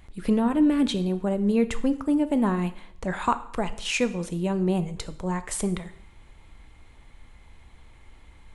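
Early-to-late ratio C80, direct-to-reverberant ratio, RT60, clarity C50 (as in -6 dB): 18.0 dB, 11.0 dB, 0.65 s, 15.0 dB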